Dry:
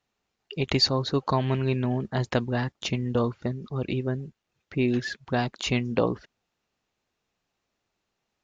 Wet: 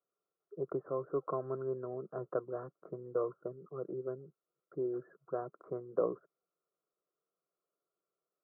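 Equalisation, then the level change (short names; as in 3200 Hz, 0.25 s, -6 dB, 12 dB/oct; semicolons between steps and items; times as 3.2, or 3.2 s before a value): steep high-pass 160 Hz 36 dB/oct; rippled Chebyshev low-pass 1400 Hz, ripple 3 dB; fixed phaser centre 880 Hz, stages 6; -4.5 dB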